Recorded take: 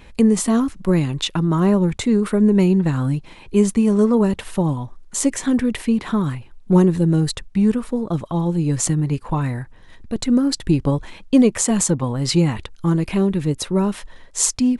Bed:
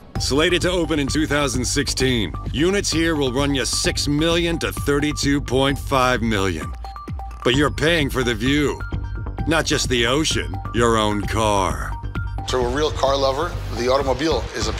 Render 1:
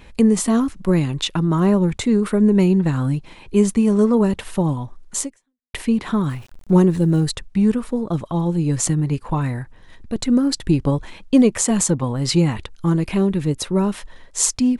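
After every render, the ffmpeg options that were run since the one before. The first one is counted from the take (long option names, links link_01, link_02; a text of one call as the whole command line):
ffmpeg -i in.wav -filter_complex "[0:a]asettb=1/sr,asplit=3[link_01][link_02][link_03];[link_01]atrim=end=6.294[link_04];[link_02]atrim=start=6.29:end=7.25,asetpts=PTS-STARTPTS,afade=type=in:duration=0.004:curve=qsin,afade=type=out:start_time=0.956:duration=0.004:curve=qsin,aeval=exprs='val(0)*gte(abs(val(0)),0.00841)':channel_layout=same[link_05];[link_03]atrim=start=7.246[link_06];[link_04][link_05]acrossfade=duration=0.004:curve1=hsin:curve2=qsin[link_07];[link_07][link_06]acrossfade=duration=0.004:curve1=qsin:curve2=hsin,asplit=2[link_08][link_09];[link_08]atrim=end=5.74,asetpts=PTS-STARTPTS,afade=type=out:start_time=5.2:duration=0.54:curve=exp[link_10];[link_09]atrim=start=5.74,asetpts=PTS-STARTPTS,afade=type=in:duration=0.004:curve=hsin[link_11];[link_10][link_11]concat=n=2:v=0:a=1" out.wav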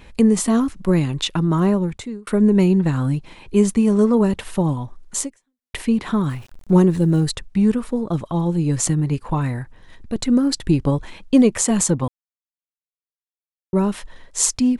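ffmpeg -i in.wav -filter_complex "[0:a]asplit=4[link_01][link_02][link_03][link_04];[link_01]atrim=end=2.27,asetpts=PTS-STARTPTS,afade=type=out:start_time=1.59:duration=0.68[link_05];[link_02]atrim=start=2.27:end=12.08,asetpts=PTS-STARTPTS,afade=type=in:duration=0.004:curve=hsin,afade=type=out:start_time=9.806:duration=0.004:curve=hsin[link_06];[link_03]atrim=start=12.08:end=13.73,asetpts=PTS-STARTPTS,volume=0[link_07];[link_04]atrim=start=13.73,asetpts=PTS-STARTPTS,afade=type=in:duration=0.004:curve=hsin[link_08];[link_05][link_06][link_07][link_08]concat=n=4:v=0:a=1" out.wav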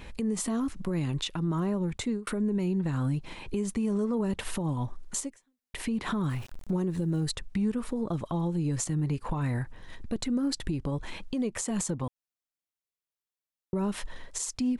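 ffmpeg -i in.wav -af "acompressor=threshold=-23dB:ratio=6,alimiter=limit=-21.5dB:level=0:latency=1:release=139" out.wav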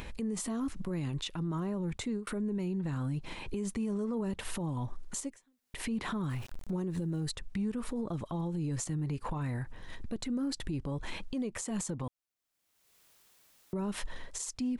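ffmpeg -i in.wav -af "acompressor=mode=upward:threshold=-41dB:ratio=2.5,alimiter=level_in=3.5dB:limit=-24dB:level=0:latency=1:release=103,volume=-3.5dB" out.wav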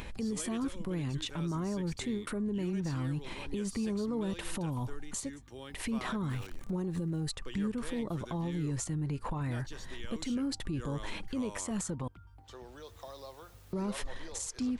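ffmpeg -i in.wav -i bed.wav -filter_complex "[1:a]volume=-29dB[link_01];[0:a][link_01]amix=inputs=2:normalize=0" out.wav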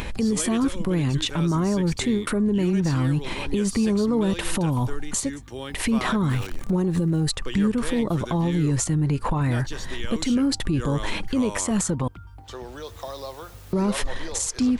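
ffmpeg -i in.wav -af "volume=12dB" out.wav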